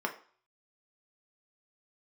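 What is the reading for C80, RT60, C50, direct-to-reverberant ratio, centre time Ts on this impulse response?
17.0 dB, 0.45 s, 12.5 dB, 2.0 dB, 11 ms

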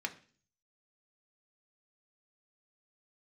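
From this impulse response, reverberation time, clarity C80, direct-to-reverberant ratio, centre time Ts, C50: 0.45 s, 20.0 dB, 3.5 dB, 6 ms, 15.5 dB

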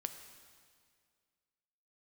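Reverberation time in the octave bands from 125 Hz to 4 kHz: 2.1 s, 2.2 s, 2.1 s, 2.0 s, 1.9 s, 1.9 s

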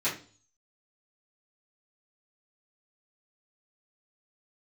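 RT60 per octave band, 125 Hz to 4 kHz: 0.65 s, 0.50 s, 0.45 s, 0.35 s, 0.35 s, 0.45 s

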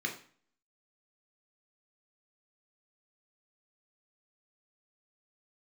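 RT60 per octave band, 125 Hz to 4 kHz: 0.50 s, 0.55 s, 0.45 s, 0.45 s, 0.45 s, 0.40 s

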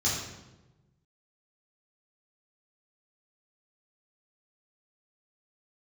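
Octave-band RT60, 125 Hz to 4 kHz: 1.7 s, 1.4 s, 1.2 s, 0.95 s, 0.85 s, 0.75 s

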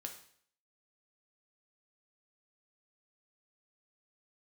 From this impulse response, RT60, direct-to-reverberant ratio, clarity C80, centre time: 0.60 s, 3.0 dB, 12.5 dB, 17 ms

